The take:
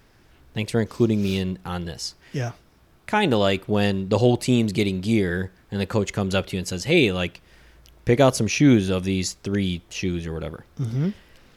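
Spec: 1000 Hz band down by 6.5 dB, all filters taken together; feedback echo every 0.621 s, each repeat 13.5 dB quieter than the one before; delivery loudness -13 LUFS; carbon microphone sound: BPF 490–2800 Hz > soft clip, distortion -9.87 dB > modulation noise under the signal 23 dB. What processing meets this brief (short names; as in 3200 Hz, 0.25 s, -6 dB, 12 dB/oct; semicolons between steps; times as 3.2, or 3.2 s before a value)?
BPF 490–2800 Hz; bell 1000 Hz -8.5 dB; feedback echo 0.621 s, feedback 21%, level -13.5 dB; soft clip -23.5 dBFS; modulation noise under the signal 23 dB; gain +21 dB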